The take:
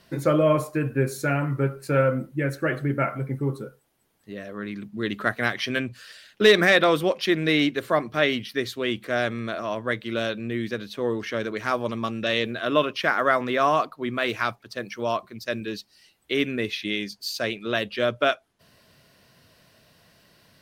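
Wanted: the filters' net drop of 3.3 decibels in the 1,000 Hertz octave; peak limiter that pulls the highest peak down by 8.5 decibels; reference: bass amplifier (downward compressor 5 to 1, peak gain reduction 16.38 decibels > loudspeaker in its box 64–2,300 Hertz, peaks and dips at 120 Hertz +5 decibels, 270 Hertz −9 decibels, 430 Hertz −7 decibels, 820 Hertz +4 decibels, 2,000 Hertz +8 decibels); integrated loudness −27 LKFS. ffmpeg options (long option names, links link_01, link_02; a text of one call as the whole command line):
ffmpeg -i in.wav -af "equalizer=frequency=1000:width_type=o:gain=-6.5,alimiter=limit=-15dB:level=0:latency=1,acompressor=threshold=-38dB:ratio=5,highpass=frequency=64:width=0.5412,highpass=frequency=64:width=1.3066,equalizer=frequency=120:width_type=q:width=4:gain=5,equalizer=frequency=270:width_type=q:width=4:gain=-9,equalizer=frequency=430:width_type=q:width=4:gain=-7,equalizer=frequency=820:width_type=q:width=4:gain=4,equalizer=frequency=2000:width_type=q:width=4:gain=8,lowpass=frequency=2300:width=0.5412,lowpass=frequency=2300:width=1.3066,volume=14.5dB" out.wav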